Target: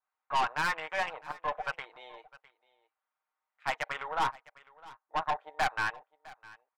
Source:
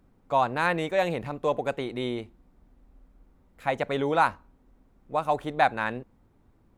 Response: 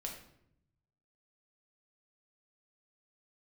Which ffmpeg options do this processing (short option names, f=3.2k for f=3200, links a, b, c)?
-af "asetnsamples=n=441:p=0,asendcmd='4.08 lowpass f 1300;5.4 lowpass f 2300',lowpass=3.3k,afwtdn=0.0141,highpass=f=910:w=0.5412,highpass=f=910:w=1.3066,aecho=1:1:6.5:0.48,aeval=exprs='(tanh(28.2*val(0)+0.35)-tanh(0.35))/28.2':c=same,aecho=1:1:657:0.0891,adynamicequalizer=threshold=0.00501:dfrequency=1900:dqfactor=0.7:tfrequency=1900:tqfactor=0.7:attack=5:release=100:ratio=0.375:range=1.5:mode=cutabove:tftype=highshelf,volume=5dB"